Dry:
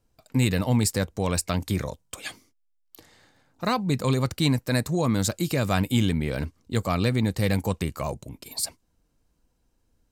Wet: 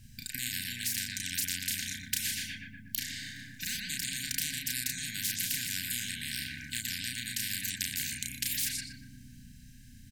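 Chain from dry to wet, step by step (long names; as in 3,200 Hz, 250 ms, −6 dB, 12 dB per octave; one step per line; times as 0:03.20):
parametric band 110 Hz +7.5 dB 0.35 octaves
downward compressor 6 to 1, threshold −29 dBFS, peak gain reduction 13.5 dB
linear-phase brick-wall band-stop 270–1,500 Hz
double-tracking delay 33 ms −3 dB
feedback echo with a low-pass in the loop 120 ms, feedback 63%, low-pass 1,400 Hz, level −3 dB
every bin compressed towards the loudest bin 10 to 1
level +7 dB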